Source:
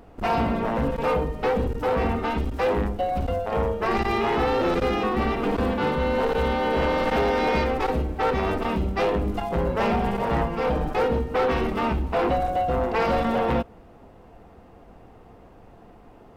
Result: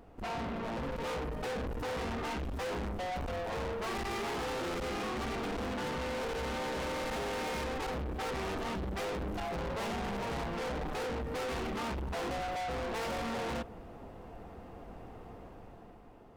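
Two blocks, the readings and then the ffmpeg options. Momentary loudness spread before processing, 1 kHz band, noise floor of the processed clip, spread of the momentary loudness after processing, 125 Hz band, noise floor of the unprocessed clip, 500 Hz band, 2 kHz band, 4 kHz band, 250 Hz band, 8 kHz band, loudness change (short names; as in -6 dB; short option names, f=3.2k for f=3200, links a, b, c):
3 LU, -12.5 dB, -52 dBFS, 14 LU, -12.5 dB, -49 dBFS, -13.5 dB, -9.5 dB, -6.0 dB, -12.5 dB, n/a, -12.5 dB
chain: -af "dynaudnorm=f=200:g=9:m=8dB,asoftclip=type=tanh:threshold=-28dB,volume=-7dB"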